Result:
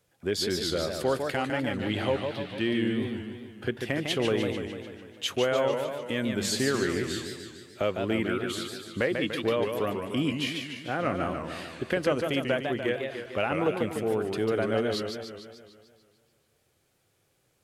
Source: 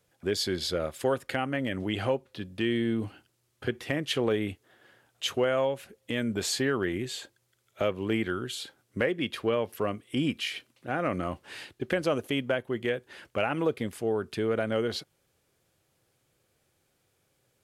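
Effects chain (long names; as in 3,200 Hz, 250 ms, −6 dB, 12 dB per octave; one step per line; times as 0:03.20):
0:01.79–0:02.64: noise in a band 1,500–3,900 Hz −50 dBFS
feedback echo with a swinging delay time 148 ms, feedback 59%, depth 190 cents, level −5.5 dB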